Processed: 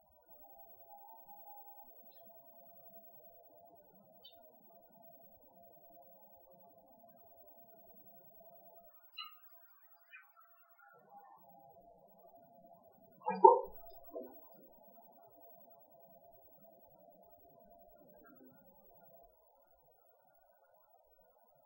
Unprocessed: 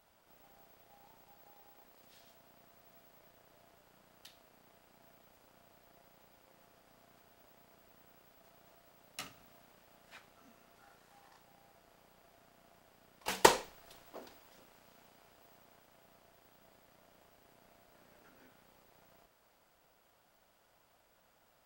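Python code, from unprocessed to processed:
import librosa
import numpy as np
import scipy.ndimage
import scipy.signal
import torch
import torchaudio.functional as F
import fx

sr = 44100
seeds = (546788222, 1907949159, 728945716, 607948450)

y = fx.highpass(x, sr, hz=1100.0, slope=12, at=(8.88, 10.94))
y = fx.spec_topn(y, sr, count=8)
y = fx.room_shoebox(y, sr, seeds[0], volume_m3=120.0, walls='furnished', distance_m=0.62)
y = F.gain(torch.from_numpy(y), 6.5).numpy()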